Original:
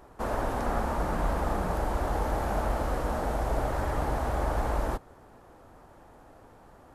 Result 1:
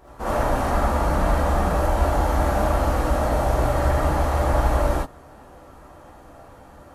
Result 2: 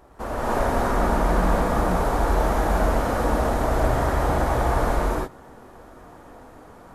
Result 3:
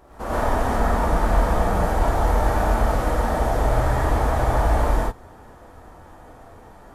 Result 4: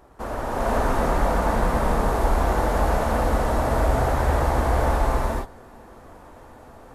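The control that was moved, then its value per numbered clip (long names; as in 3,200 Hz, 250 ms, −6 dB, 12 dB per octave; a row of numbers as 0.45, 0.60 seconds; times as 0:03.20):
reverb whose tail is shaped and stops, gate: 100, 320, 160, 500 milliseconds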